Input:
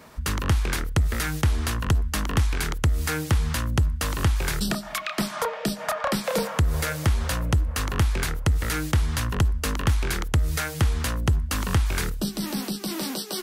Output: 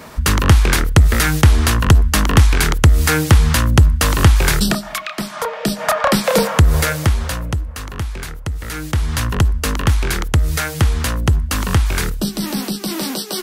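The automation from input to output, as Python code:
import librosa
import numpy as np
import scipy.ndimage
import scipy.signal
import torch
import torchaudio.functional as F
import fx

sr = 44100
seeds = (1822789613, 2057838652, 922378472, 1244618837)

y = fx.gain(x, sr, db=fx.line((4.53, 11.5), (5.23, 1.5), (5.91, 10.5), (6.77, 10.5), (7.78, -2.0), (8.59, -2.0), (9.2, 7.0)))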